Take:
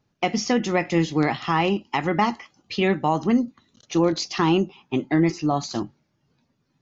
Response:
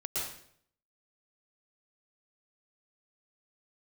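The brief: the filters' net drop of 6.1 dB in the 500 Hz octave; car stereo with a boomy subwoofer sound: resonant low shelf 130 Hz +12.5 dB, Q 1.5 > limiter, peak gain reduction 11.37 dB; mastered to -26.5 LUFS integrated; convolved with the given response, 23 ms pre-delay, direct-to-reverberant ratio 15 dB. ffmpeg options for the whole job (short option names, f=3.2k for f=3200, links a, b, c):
-filter_complex "[0:a]equalizer=f=500:t=o:g=-7.5,asplit=2[a][b];[1:a]atrim=start_sample=2205,adelay=23[c];[b][c]afir=irnorm=-1:irlink=0,volume=-19dB[d];[a][d]amix=inputs=2:normalize=0,lowshelf=f=130:t=q:w=1.5:g=12.5,volume=5.5dB,alimiter=limit=-17dB:level=0:latency=1"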